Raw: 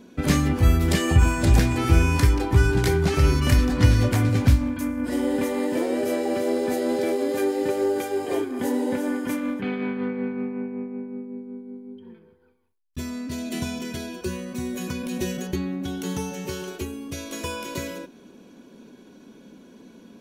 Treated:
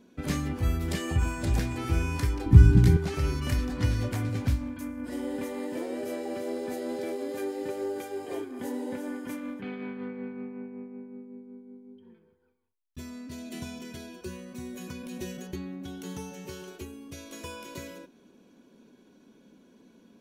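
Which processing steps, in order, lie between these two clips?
2.46–2.97 resonant low shelf 330 Hz +13 dB, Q 1.5; gain -9.5 dB

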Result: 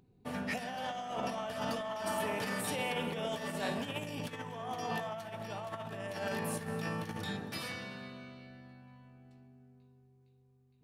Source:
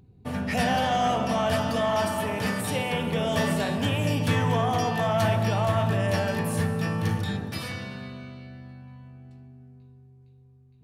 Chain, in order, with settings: negative-ratio compressor -27 dBFS, ratio -0.5; bell 77 Hz -13 dB 1.9 oct; gain -7.5 dB

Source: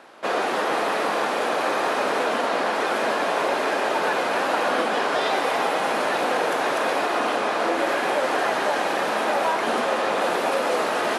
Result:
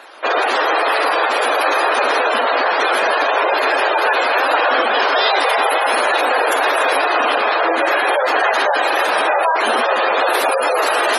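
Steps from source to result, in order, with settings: RIAA curve recording; wow and flutter 26 cents; spectral gate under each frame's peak -15 dB strong; gain +8 dB

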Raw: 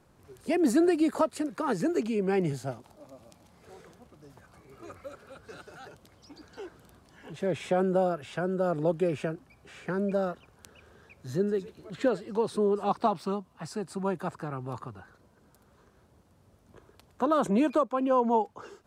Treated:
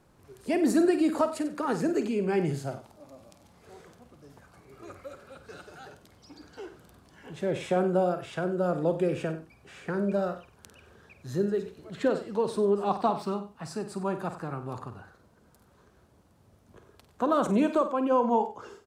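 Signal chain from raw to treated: doubler 50 ms -10.5 dB; on a send: echo 94 ms -14.5 dB

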